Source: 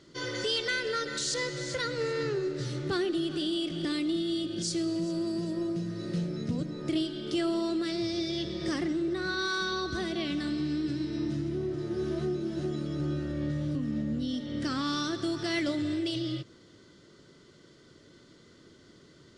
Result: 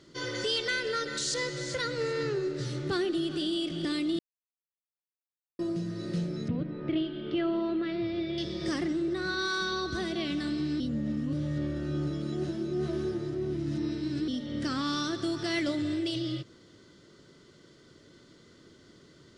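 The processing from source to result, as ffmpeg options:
-filter_complex "[0:a]asettb=1/sr,asplit=3[a][b][c];[a]atrim=end=6.484[d];[b]atrim=start=6.48:end=8.38,asetpts=PTS-STARTPTS,afade=t=in:d=0.004:c=qsin,afade=t=out:st=1.896:d=0.004:c=qsin,lowpass=f=3k:w=0.5412,lowpass=f=3k:w=1.3066[e];[c]atrim=start=8.376[f];[d][e]acrossfade=d=0.004:c1=hsin:c2=qsin[g];[g][f]acrossfade=d=0.004:c1=qsin:c2=hsin,asplit=5[h][i][j][k][l];[h]atrim=end=4.19,asetpts=PTS-STARTPTS,afade=t=out:st=4.186:d=0.004:c=hsin[m];[i]atrim=start=4.19:end=5.59,asetpts=PTS-STARTPTS,volume=0[n];[j]atrim=start=5.59:end=10.802,asetpts=PTS-STARTPTS,afade=t=in:d=0.004:c=hsin[o];[k]atrim=start=10.798:end=14.282,asetpts=PTS-STARTPTS,areverse[p];[l]atrim=start=14.278[q];[m][n][o]concat=n=3:v=0:a=1[r];[r][p]acrossfade=d=0.004:c1=hsin:c2=hsin[s];[s][q]acrossfade=d=0.004:c1=hsin:c2=hsin"

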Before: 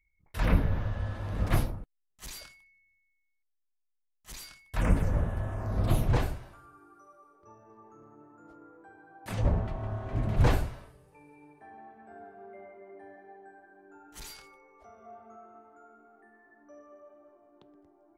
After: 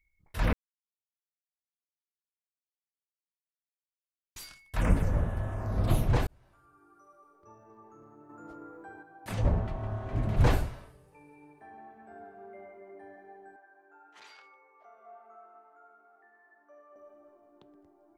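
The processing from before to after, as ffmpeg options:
-filter_complex "[0:a]asettb=1/sr,asplit=3[a][b][c];[a]atrim=end=8.294[d];[b]atrim=start=8.29:end=9.03,asetpts=PTS-STARTPTS,afade=t=in:d=0.004:c=qsin,afade=t=out:st=0.736:d=0.004:c=qsin,acontrast=57[e];[c]atrim=start=9.026[f];[d][e]acrossfade=d=0.004:c1=hsin:c2=qsin[g];[g][f]acrossfade=d=0.004:c1=qsin:c2=hsin,asettb=1/sr,asplit=3[h][i][j];[h]atrim=end=13.564[k];[i]atrim=start=13.56:end=16.96,asetpts=PTS-STARTPTS,afade=t=in:d=0.004:c=qsin,afade=t=out:st=3.396:d=0.004:c=qsin,highpass=610,lowpass=2.7k[l];[j]atrim=start=16.956[m];[k][l]acrossfade=d=0.004:c1=hsin:c2=qsin[n];[n][m]acrossfade=d=0.004:c1=qsin:c2=hsin,asplit=4[o][p][q][r];[o]atrim=end=0.53,asetpts=PTS-STARTPTS,afade=t=out:st=0.526:d=0.004:c=hsin[s];[p]atrim=start=0.53:end=4.36,asetpts=PTS-STARTPTS,volume=0[t];[q]atrim=start=4.36:end=6.27,asetpts=PTS-STARTPTS,afade=t=in:d=0.004:c=hsin,afade=t=out:st=1.906:d=0.004:c=hsin[u];[r]atrim=start=6.27,asetpts=PTS-STARTPTS,afade=t=in:d=1.49:c=qsin[v];[s][t][u][v]concat=n=4:v=0:a=1"

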